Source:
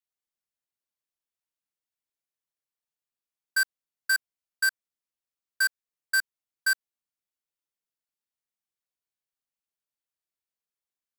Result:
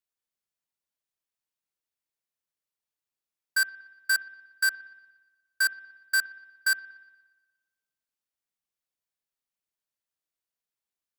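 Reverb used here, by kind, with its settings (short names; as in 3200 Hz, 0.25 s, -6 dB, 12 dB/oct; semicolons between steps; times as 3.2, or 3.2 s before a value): spring tank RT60 1.2 s, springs 57 ms, chirp 70 ms, DRR 17 dB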